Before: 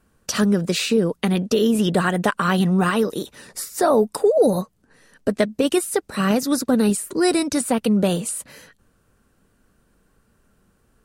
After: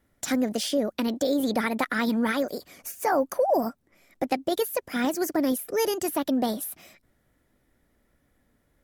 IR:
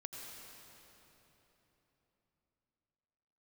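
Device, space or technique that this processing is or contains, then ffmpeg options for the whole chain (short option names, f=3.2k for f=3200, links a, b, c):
nightcore: -af "asetrate=55125,aresample=44100,volume=-6.5dB"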